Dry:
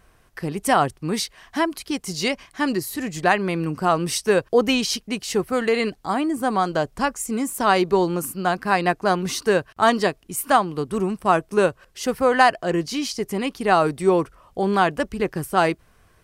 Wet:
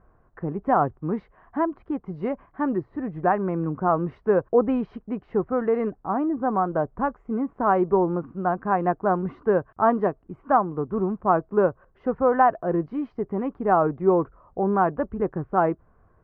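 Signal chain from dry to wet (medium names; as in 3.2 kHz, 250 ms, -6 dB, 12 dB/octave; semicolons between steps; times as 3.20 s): low-pass 1.3 kHz 24 dB/octave; trim -1.5 dB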